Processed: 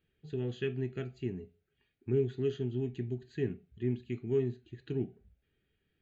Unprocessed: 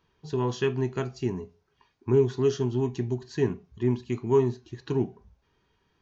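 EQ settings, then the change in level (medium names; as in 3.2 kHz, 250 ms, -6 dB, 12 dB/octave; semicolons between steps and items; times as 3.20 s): static phaser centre 2.4 kHz, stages 4; -6.5 dB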